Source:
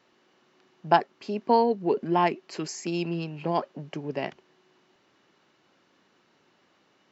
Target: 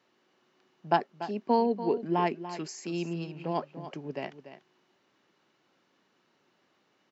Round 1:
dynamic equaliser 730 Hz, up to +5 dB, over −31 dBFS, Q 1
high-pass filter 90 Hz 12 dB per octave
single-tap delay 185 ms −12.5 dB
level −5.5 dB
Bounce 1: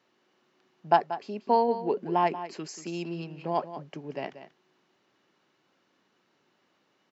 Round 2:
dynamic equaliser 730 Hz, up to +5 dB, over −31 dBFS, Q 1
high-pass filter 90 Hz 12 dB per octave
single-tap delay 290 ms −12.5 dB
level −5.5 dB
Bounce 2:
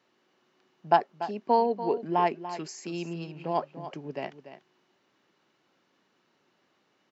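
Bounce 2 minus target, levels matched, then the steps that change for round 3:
250 Hz band −4.5 dB
change: dynamic equaliser 230 Hz, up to +5 dB, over −31 dBFS, Q 1

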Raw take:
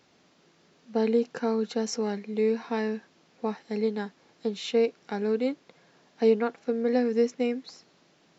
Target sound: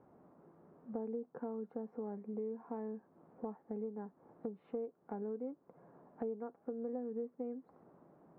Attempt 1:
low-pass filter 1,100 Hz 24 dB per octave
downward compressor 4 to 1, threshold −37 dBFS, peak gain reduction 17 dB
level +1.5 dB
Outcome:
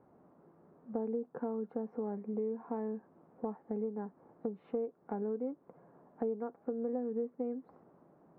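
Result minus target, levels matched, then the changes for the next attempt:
downward compressor: peak gain reduction −5 dB
change: downward compressor 4 to 1, threshold −43.5 dBFS, peak gain reduction 22 dB

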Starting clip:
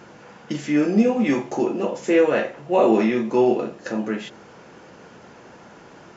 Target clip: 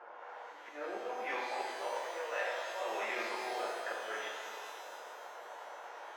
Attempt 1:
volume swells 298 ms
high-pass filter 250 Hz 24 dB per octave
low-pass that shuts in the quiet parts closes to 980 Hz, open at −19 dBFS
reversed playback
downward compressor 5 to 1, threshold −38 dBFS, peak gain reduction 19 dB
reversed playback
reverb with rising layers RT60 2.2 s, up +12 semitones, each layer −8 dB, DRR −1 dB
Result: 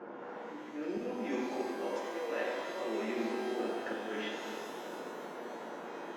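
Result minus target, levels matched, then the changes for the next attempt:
250 Hz band +13.5 dB
change: high-pass filter 630 Hz 24 dB per octave

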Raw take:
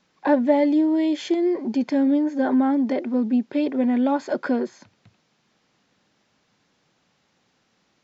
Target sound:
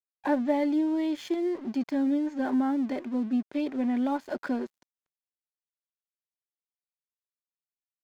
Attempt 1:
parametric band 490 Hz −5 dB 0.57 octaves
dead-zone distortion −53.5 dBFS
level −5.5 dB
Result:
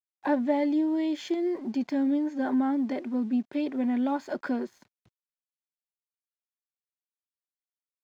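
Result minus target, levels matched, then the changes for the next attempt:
dead-zone distortion: distortion −10 dB
change: dead-zone distortion −43 dBFS

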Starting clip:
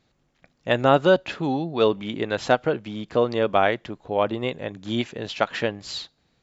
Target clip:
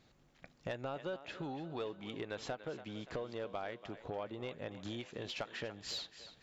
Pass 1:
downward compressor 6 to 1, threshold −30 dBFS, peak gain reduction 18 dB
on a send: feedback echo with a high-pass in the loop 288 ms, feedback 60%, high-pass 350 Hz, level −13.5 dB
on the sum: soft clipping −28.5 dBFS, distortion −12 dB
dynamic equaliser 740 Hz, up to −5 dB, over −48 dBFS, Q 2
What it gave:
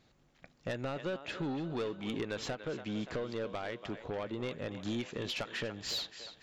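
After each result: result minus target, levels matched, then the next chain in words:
downward compressor: peak gain reduction −7 dB; 1,000 Hz band −3.5 dB
downward compressor 6 to 1, threshold −38.5 dBFS, peak gain reduction 25 dB
on a send: feedback echo with a high-pass in the loop 288 ms, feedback 60%, high-pass 350 Hz, level −13.5 dB
on the sum: soft clipping −28.5 dBFS, distortion −19 dB
dynamic equaliser 740 Hz, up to −5 dB, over −48 dBFS, Q 2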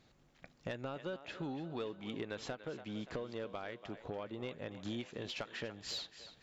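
1,000 Hz band −2.5 dB
downward compressor 6 to 1, threshold −38.5 dBFS, peak gain reduction 25 dB
on a send: feedback echo with a high-pass in the loop 288 ms, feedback 60%, high-pass 350 Hz, level −13.5 dB
on the sum: soft clipping −28.5 dBFS, distortion −19 dB
dynamic equaliser 220 Hz, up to −5 dB, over −48 dBFS, Q 2

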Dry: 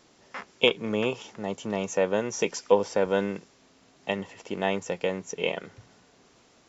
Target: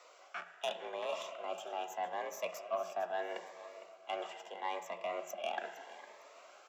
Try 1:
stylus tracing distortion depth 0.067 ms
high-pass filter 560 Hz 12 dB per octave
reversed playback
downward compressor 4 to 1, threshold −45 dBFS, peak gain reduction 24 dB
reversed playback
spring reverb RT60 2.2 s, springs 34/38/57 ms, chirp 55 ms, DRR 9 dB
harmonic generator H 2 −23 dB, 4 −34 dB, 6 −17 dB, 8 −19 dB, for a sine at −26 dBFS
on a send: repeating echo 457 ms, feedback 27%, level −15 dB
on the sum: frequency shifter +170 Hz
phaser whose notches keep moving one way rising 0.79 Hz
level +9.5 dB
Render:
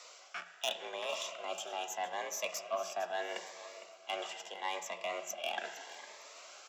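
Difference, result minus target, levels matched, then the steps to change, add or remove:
4,000 Hz band +5.5 dB
add after high-pass filter: parametric band 5,600 Hz −13 dB 2.6 octaves

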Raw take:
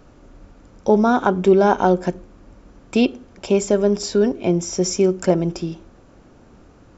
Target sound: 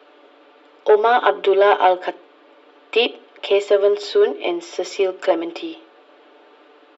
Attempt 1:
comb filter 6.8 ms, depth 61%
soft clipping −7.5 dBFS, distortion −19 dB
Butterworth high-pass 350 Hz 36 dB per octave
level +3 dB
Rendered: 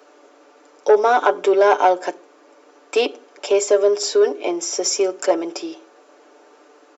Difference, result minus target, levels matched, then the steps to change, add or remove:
8,000 Hz band +17.0 dB
add after Butterworth high-pass: high shelf with overshoot 4,700 Hz −11.5 dB, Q 3

